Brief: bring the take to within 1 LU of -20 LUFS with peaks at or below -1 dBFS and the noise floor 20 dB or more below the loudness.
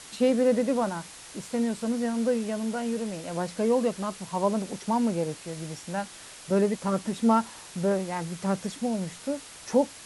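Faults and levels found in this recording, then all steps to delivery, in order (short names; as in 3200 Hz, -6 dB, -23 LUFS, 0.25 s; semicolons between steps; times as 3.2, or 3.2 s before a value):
noise floor -46 dBFS; noise floor target -48 dBFS; loudness -28.0 LUFS; peak -11.0 dBFS; loudness target -20.0 LUFS
-> denoiser 6 dB, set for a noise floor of -46 dBFS; gain +8 dB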